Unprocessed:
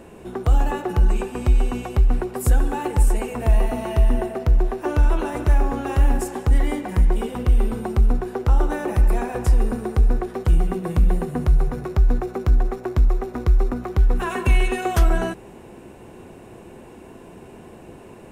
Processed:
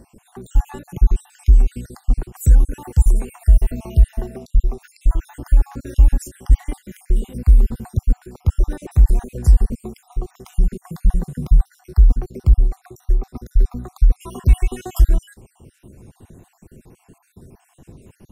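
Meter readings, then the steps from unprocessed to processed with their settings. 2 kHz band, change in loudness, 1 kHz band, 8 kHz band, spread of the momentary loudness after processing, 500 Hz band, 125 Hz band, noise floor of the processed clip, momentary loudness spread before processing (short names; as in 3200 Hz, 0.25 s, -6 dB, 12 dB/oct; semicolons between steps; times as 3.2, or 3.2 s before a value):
-12.0 dB, +2.0 dB, -12.0 dB, -1.0 dB, 10 LU, -10.0 dB, +2.5 dB, -61 dBFS, 3 LU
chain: random spectral dropouts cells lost 54%; tone controls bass +15 dB, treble +13 dB; gain -9 dB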